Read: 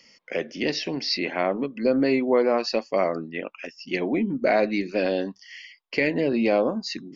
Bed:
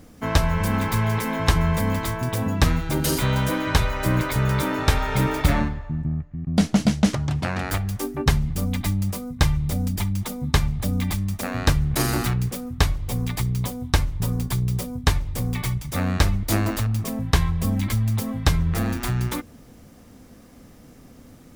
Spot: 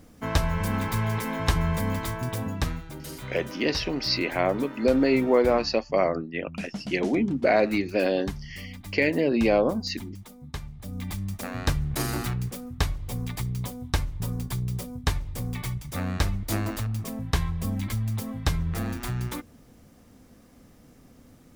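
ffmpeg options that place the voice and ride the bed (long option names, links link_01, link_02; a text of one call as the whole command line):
ffmpeg -i stem1.wav -i stem2.wav -filter_complex "[0:a]adelay=3000,volume=0dB[link_01];[1:a]volume=6dB,afade=type=out:start_time=2.26:duration=0.68:silence=0.251189,afade=type=in:start_time=10.79:duration=0.46:silence=0.298538[link_02];[link_01][link_02]amix=inputs=2:normalize=0" out.wav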